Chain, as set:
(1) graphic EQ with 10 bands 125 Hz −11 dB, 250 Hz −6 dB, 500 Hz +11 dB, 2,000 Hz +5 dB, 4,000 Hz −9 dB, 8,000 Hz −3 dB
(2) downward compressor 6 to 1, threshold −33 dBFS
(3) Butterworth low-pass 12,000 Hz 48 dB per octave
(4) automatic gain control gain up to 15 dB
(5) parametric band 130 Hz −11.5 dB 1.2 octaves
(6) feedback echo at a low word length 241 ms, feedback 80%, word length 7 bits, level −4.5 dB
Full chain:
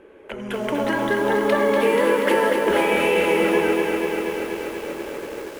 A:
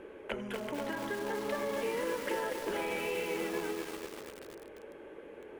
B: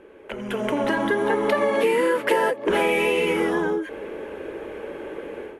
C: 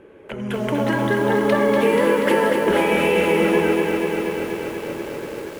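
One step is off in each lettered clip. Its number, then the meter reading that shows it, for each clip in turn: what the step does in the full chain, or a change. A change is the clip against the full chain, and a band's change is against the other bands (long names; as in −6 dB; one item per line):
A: 4, 8 kHz band +6.0 dB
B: 6, change in momentary loudness spread +2 LU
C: 5, 125 Hz band +7.5 dB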